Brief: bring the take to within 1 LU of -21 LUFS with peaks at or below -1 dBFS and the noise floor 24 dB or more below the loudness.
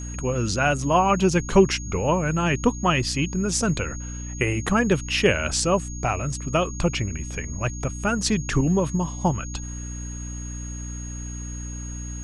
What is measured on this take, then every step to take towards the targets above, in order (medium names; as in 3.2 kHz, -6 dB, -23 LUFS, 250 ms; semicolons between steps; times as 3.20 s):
hum 60 Hz; highest harmonic 300 Hz; hum level -31 dBFS; steady tone 6.6 kHz; tone level -38 dBFS; loudness -24.0 LUFS; peak level -4.5 dBFS; loudness target -21.0 LUFS
-> hum notches 60/120/180/240/300 Hz; band-stop 6.6 kHz, Q 30; trim +3 dB